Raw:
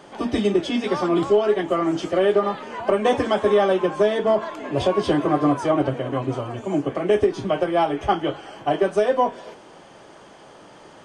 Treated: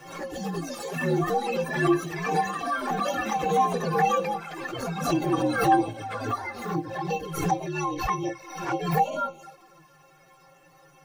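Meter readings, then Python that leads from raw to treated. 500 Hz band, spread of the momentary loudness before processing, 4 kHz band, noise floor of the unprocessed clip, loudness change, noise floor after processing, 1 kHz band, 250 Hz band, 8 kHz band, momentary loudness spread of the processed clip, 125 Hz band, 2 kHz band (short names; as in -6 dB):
-10.0 dB, 7 LU, -6.0 dB, -46 dBFS, -5.5 dB, -57 dBFS, -0.5 dB, -5.5 dB, n/a, 9 LU, -1.0 dB, 0.0 dB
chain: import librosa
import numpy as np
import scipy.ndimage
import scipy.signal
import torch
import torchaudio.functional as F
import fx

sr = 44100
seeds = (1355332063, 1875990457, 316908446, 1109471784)

y = fx.partial_stretch(x, sr, pct=124)
y = fx.stiff_resonator(y, sr, f0_hz=160.0, decay_s=0.22, stiffness=0.03)
y = fx.env_flanger(y, sr, rest_ms=8.6, full_db=-30.0)
y = fx.echo_pitch(y, sr, ms=322, semitones=7, count=2, db_per_echo=-6.0)
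y = fx.pre_swell(y, sr, db_per_s=68.0)
y = y * librosa.db_to_amplitude(8.0)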